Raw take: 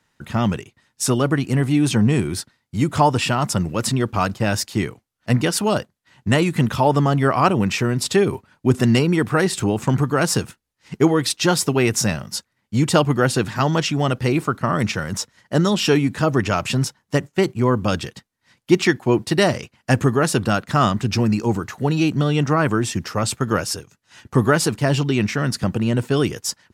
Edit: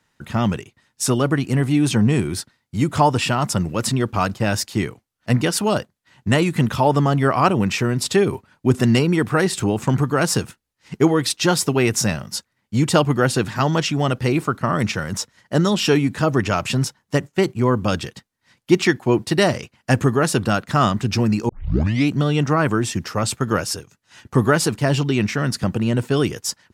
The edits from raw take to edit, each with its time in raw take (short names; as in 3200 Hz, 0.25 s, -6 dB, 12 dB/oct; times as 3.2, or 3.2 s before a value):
21.49 tape start 0.61 s